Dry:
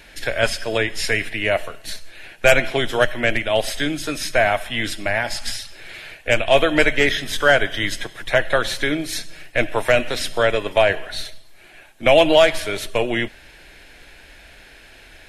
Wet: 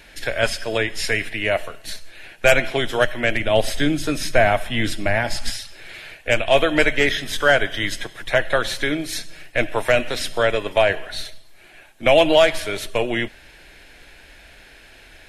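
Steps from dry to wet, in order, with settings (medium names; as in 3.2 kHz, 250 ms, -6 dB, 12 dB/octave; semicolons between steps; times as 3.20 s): 3.40–5.50 s: bass shelf 450 Hz +7.5 dB; trim -1 dB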